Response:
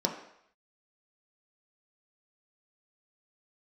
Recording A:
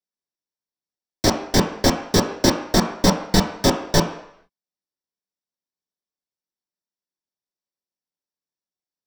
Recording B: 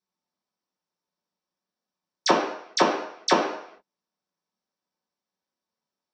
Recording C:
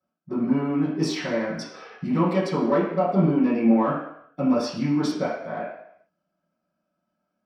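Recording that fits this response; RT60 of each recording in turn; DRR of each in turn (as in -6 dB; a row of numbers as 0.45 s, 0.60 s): A; 0.70 s, 0.70 s, 0.70 s; 1.0 dB, -8.5 dB, -14.0 dB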